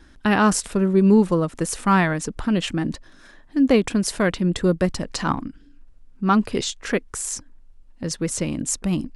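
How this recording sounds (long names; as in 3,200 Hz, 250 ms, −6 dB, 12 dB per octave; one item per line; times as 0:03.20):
background noise floor −49 dBFS
spectral slope −5.0 dB per octave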